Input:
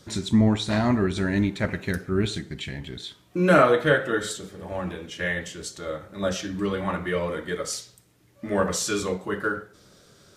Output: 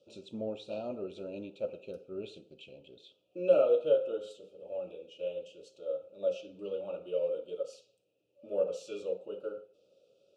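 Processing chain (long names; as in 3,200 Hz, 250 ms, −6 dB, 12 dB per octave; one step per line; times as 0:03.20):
elliptic band-stop filter 1,300–2,600 Hz, stop band 50 dB
dynamic equaliser 1,100 Hz, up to +4 dB, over −41 dBFS, Q 1.4
formant filter e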